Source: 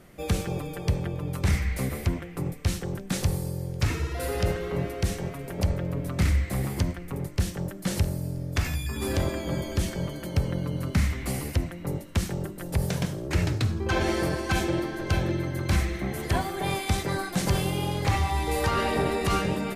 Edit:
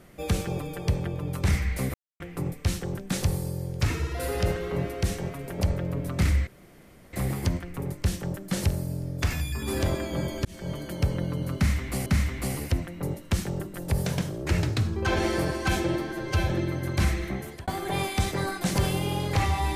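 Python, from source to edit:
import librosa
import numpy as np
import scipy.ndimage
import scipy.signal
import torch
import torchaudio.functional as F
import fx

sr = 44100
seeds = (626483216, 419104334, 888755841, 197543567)

y = fx.edit(x, sr, fx.silence(start_s=1.94, length_s=0.26),
    fx.insert_room_tone(at_s=6.47, length_s=0.66),
    fx.fade_in_span(start_s=9.79, length_s=0.32),
    fx.repeat(start_s=10.9, length_s=0.5, count=2),
    fx.stretch_span(start_s=14.96, length_s=0.25, factor=1.5),
    fx.fade_out_span(start_s=15.99, length_s=0.4), tone=tone)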